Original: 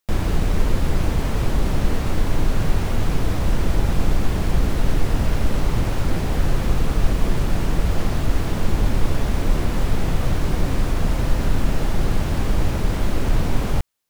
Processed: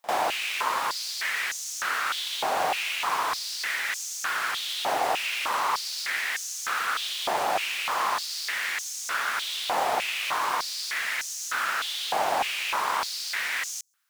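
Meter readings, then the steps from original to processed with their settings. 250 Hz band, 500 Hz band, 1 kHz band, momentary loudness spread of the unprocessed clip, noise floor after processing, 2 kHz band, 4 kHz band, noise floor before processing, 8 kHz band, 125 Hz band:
-23.0 dB, -6.0 dB, +5.5 dB, 1 LU, -35 dBFS, +6.5 dB, +6.5 dB, -24 dBFS, +5.5 dB, under -35 dB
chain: pre-echo 47 ms -19 dB; stepped high-pass 3.3 Hz 760–6300 Hz; gain +2 dB

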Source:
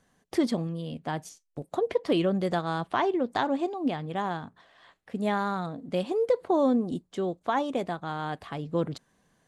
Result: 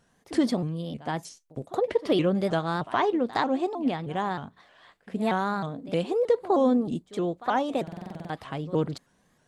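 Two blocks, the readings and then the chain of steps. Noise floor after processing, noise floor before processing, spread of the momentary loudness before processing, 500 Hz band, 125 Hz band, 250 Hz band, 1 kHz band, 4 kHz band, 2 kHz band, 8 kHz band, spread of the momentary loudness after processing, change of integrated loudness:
-67 dBFS, -73 dBFS, 10 LU, +1.5 dB, +2.0 dB, +1.5 dB, +1.5 dB, +1.5 dB, +1.5 dB, n/a, 13 LU, +1.5 dB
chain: pre-echo 67 ms -18 dB; stuck buffer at 7.83, samples 2048, times 9; shaped vibrato saw up 3.2 Hz, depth 160 cents; gain +1.5 dB

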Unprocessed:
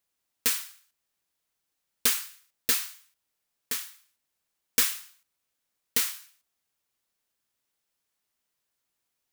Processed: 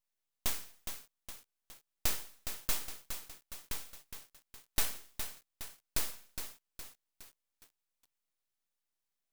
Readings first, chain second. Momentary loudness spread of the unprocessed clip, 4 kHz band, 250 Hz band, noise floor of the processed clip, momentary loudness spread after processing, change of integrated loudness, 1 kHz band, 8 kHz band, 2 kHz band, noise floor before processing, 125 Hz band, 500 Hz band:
17 LU, -9.5 dB, -6.5 dB, under -85 dBFS, 21 LU, -12.5 dB, -3.5 dB, -9.5 dB, -9.5 dB, -82 dBFS, +6.0 dB, -5.5 dB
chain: full-wave rectifier; lo-fi delay 0.414 s, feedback 55%, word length 7-bit, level -8 dB; gain -6 dB

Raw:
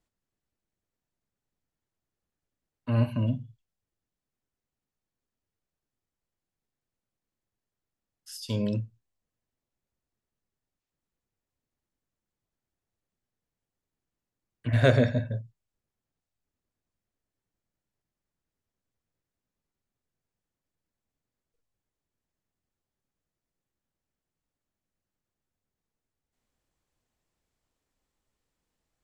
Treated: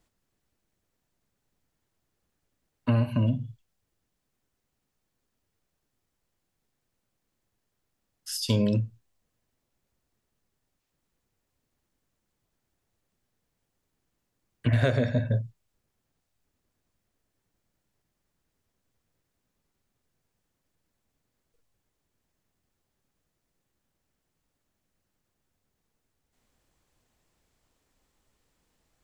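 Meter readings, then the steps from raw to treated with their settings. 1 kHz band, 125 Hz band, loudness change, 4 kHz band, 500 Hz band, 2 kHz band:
-1.0 dB, +1.0 dB, +0.5 dB, +4.0 dB, -2.0 dB, -2.0 dB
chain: compressor 10:1, threshold -29 dBFS, peak gain reduction 15 dB; gain +9 dB

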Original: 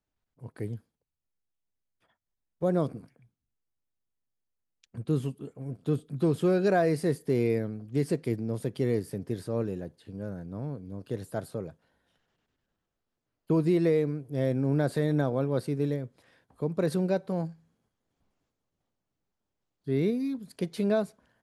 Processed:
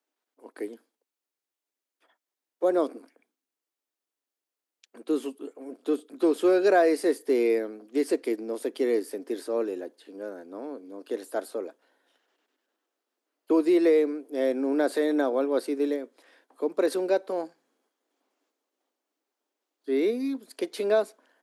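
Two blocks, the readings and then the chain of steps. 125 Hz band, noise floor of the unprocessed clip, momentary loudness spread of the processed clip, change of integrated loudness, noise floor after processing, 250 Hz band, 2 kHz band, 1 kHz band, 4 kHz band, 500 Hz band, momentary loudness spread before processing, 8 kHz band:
under -25 dB, -85 dBFS, 17 LU, +3.0 dB, under -85 dBFS, +1.5 dB, +4.5 dB, +4.5 dB, +4.5 dB, +4.5 dB, 14 LU, +4.5 dB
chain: steep high-pass 270 Hz 48 dB/oct; gain +4.5 dB

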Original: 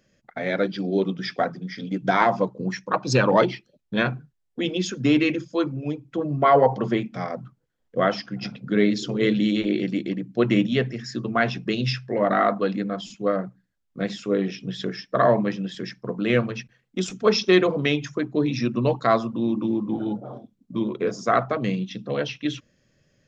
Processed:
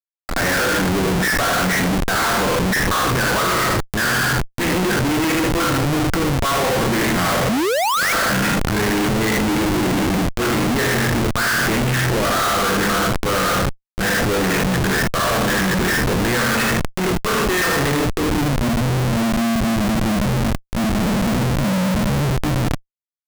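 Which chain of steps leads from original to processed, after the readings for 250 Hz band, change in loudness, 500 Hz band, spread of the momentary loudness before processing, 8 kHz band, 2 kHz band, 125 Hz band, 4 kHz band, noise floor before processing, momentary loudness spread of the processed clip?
+4.5 dB, +5.5 dB, +1.5 dB, 12 LU, n/a, +11.0 dB, +9.0 dB, +9.5 dB, -72 dBFS, 3 LU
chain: spectral trails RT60 0.57 s; low-pass sweep 1700 Hz -> 200 Hz, 17.81–18.45; high shelf 2800 Hz -9.5 dB; feedback echo 78 ms, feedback 38%, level -8 dB; AGC gain up to 5.5 dB; doubler 22 ms -12 dB; reverse; compressor 16:1, threshold -25 dBFS, peak gain reduction 18.5 dB; reverse; band shelf 1900 Hz +10 dB; painted sound rise, 7.49–8.13, 200–2400 Hz -19 dBFS; Schmitt trigger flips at -31.5 dBFS; transient shaper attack -4 dB, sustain +7 dB; gain +8 dB

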